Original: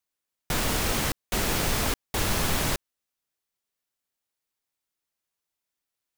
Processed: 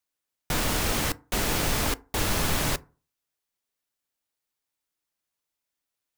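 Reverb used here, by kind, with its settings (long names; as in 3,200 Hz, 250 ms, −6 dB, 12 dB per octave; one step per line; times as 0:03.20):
feedback delay network reverb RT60 0.37 s, low-frequency decay 1.05×, high-frequency decay 0.45×, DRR 15.5 dB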